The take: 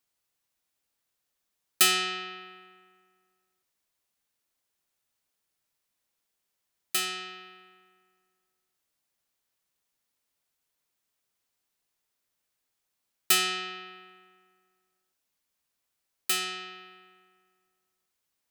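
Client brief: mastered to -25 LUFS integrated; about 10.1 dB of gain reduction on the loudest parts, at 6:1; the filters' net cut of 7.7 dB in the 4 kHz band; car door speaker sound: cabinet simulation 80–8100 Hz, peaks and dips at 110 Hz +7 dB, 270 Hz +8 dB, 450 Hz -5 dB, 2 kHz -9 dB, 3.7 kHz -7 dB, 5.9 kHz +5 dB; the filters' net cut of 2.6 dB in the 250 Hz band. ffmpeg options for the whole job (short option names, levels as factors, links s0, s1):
-af "equalizer=f=250:t=o:g=-5.5,equalizer=f=4000:t=o:g=-8,acompressor=threshold=0.0316:ratio=6,highpass=80,equalizer=f=110:t=q:w=4:g=7,equalizer=f=270:t=q:w=4:g=8,equalizer=f=450:t=q:w=4:g=-5,equalizer=f=2000:t=q:w=4:g=-9,equalizer=f=3700:t=q:w=4:g=-7,equalizer=f=5900:t=q:w=4:g=5,lowpass=f=8100:w=0.5412,lowpass=f=8100:w=1.3066,volume=5.96"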